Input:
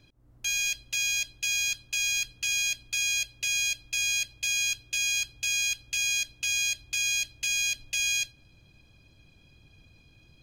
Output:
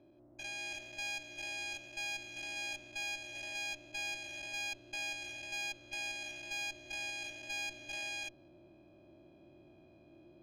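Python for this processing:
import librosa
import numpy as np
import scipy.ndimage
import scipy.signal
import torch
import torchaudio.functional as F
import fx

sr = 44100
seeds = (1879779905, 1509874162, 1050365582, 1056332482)

y = fx.spec_steps(x, sr, hold_ms=200)
y = fx.double_bandpass(y, sr, hz=460.0, octaves=0.77)
y = fx.cheby_harmonics(y, sr, harmonics=(4,), levels_db=(-16,), full_scale_db=-46.5)
y = y * librosa.db_to_amplitude(16.0)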